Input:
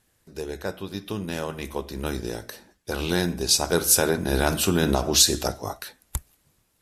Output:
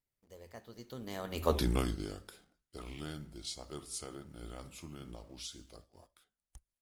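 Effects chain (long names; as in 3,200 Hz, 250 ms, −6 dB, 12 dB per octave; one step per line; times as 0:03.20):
source passing by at 0:01.57, 57 m/s, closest 3.9 metres
in parallel at −7 dB: log-companded quantiser 6 bits
on the sum: low-shelf EQ 63 Hz +9.5 dB
level +2 dB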